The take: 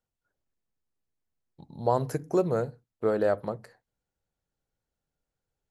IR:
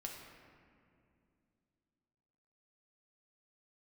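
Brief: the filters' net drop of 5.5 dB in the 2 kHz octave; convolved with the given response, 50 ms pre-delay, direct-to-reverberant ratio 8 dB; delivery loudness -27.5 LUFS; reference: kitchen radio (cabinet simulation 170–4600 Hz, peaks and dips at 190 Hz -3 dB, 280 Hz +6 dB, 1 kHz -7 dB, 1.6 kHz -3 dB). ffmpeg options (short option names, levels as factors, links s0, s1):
-filter_complex "[0:a]equalizer=f=2000:t=o:g=-4,asplit=2[s0][s1];[1:a]atrim=start_sample=2205,adelay=50[s2];[s1][s2]afir=irnorm=-1:irlink=0,volume=0.501[s3];[s0][s3]amix=inputs=2:normalize=0,highpass=170,equalizer=f=190:t=q:w=4:g=-3,equalizer=f=280:t=q:w=4:g=6,equalizer=f=1000:t=q:w=4:g=-7,equalizer=f=1600:t=q:w=4:g=-3,lowpass=f=4600:w=0.5412,lowpass=f=4600:w=1.3066,volume=1.19"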